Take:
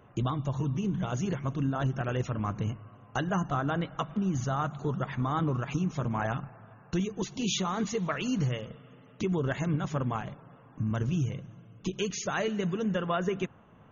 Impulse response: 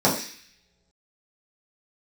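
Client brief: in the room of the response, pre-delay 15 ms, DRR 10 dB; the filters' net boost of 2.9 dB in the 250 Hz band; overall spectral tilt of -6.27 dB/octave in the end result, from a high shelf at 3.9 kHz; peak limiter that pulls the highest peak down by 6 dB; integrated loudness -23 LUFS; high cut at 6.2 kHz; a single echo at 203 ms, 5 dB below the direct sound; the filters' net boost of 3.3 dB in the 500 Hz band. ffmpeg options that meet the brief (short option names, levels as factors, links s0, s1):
-filter_complex "[0:a]lowpass=6200,equalizer=f=250:t=o:g=3.5,equalizer=f=500:t=o:g=3,highshelf=f=3900:g=7.5,alimiter=limit=0.0944:level=0:latency=1,aecho=1:1:203:0.562,asplit=2[s0][s1];[1:a]atrim=start_sample=2205,adelay=15[s2];[s1][s2]afir=irnorm=-1:irlink=0,volume=0.0398[s3];[s0][s3]amix=inputs=2:normalize=0,volume=2"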